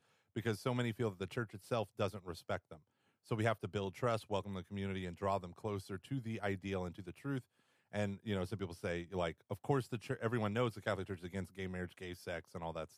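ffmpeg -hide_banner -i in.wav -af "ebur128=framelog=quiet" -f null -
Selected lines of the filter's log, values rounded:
Integrated loudness:
  I:         -40.7 LUFS
  Threshold: -50.9 LUFS
Loudness range:
  LRA:         2.7 LU
  Threshold: -60.8 LUFS
  LRA low:   -42.3 LUFS
  LRA high:  -39.6 LUFS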